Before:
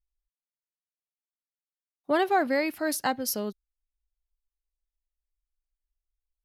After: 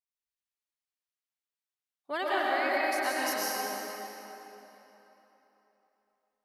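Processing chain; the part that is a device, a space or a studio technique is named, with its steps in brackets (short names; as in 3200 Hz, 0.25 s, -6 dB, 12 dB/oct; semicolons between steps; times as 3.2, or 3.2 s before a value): HPF 1500 Hz 6 dB/oct; 2.34–3.11 high shelf 5200 Hz -5.5 dB; swimming-pool hall (reverb RT60 3.6 s, pre-delay 99 ms, DRR -6 dB; high shelf 5700 Hz -7 dB); gain -2 dB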